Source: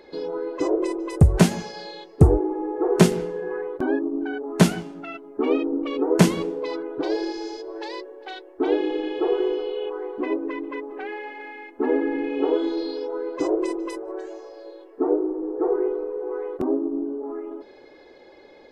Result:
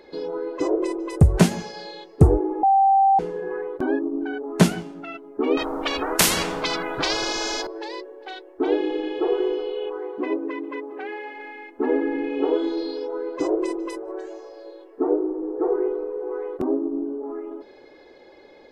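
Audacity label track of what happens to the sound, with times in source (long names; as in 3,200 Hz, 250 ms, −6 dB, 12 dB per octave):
2.630000	3.190000	beep over 781 Hz −13 dBFS
5.570000	7.670000	every bin compressed towards the loudest bin 4 to 1
9.970000	11.360000	high-pass filter 62 Hz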